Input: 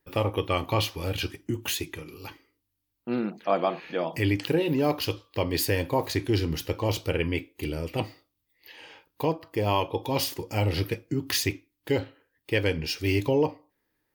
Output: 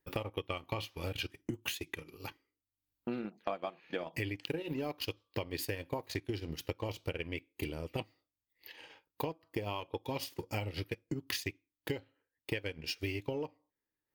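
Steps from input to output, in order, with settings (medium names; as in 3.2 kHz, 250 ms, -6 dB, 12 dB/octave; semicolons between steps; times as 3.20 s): dynamic bell 2.5 kHz, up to +4 dB, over -43 dBFS, Q 1.2; transient shaper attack +6 dB, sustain -9 dB; in parallel at -8.5 dB: crossover distortion -38 dBFS; on the sum: compression 6:1, threshold -27 dBFS, peak gain reduction 15 dB; trim -7 dB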